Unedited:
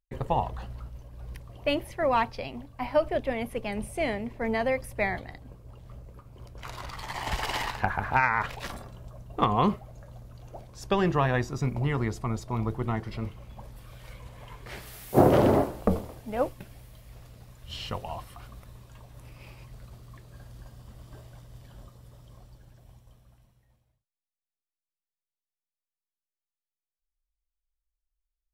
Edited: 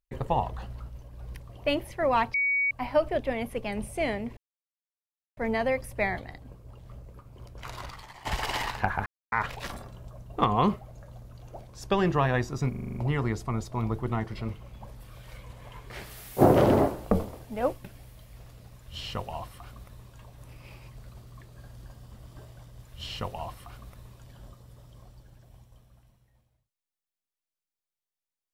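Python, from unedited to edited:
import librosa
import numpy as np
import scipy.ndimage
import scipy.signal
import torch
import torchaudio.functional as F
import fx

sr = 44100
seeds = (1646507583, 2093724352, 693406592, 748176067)

y = fx.edit(x, sr, fx.bleep(start_s=2.34, length_s=0.37, hz=2250.0, db=-22.5),
    fx.insert_silence(at_s=4.37, length_s=1.0),
    fx.fade_out_to(start_s=6.84, length_s=0.41, curve='qua', floor_db=-15.0),
    fx.silence(start_s=8.06, length_s=0.26),
    fx.stutter(start_s=11.71, slice_s=0.04, count=7),
    fx.duplicate(start_s=17.53, length_s=1.41, to_s=21.59), tone=tone)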